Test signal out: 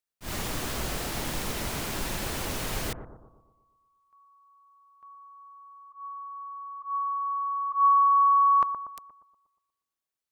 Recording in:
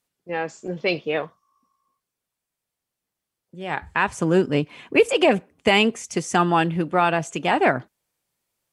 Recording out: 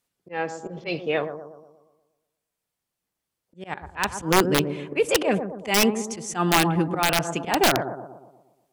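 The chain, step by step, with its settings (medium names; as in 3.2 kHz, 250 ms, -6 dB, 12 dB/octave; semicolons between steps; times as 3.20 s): slow attack 119 ms; bucket-brigade echo 119 ms, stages 1024, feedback 50%, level -9 dB; integer overflow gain 10 dB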